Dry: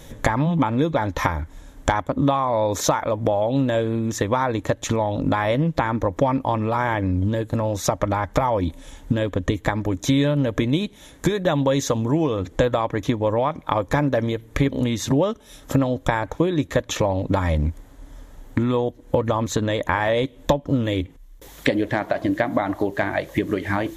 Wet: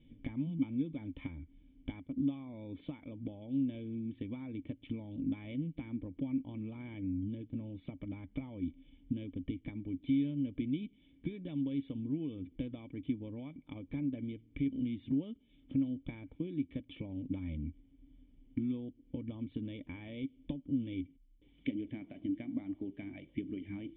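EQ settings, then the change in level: cascade formant filter i; peaking EQ 420 Hz -4 dB 2.4 oct; -6.5 dB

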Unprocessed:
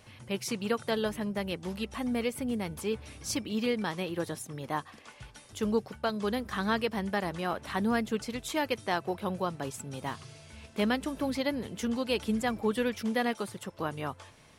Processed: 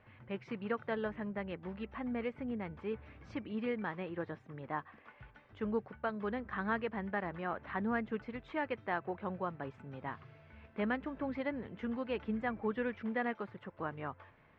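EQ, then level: four-pole ladder low-pass 2.4 kHz, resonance 30%; 0.0 dB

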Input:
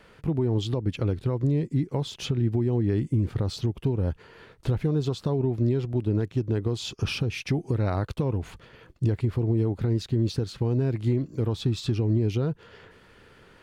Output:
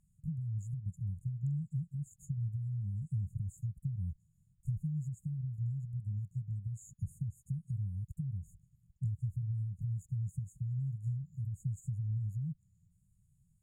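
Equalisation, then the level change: brick-wall FIR band-stop 190–6600 Hz; bass shelf 180 Hz -6 dB; treble shelf 6 kHz -5.5 dB; -5.5 dB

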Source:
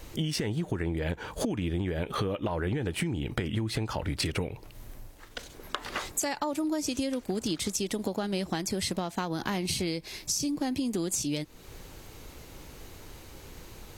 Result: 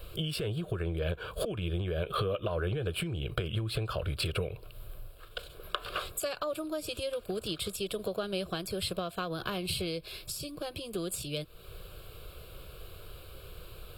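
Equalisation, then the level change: static phaser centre 1.3 kHz, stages 8; +1.5 dB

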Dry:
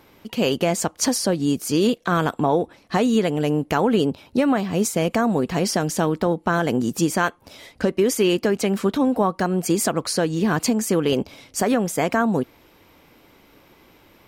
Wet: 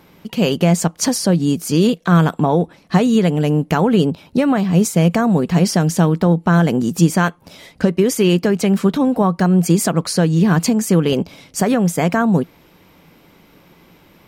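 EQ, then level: peaking EQ 170 Hz +11.5 dB 0.41 oct; +2.5 dB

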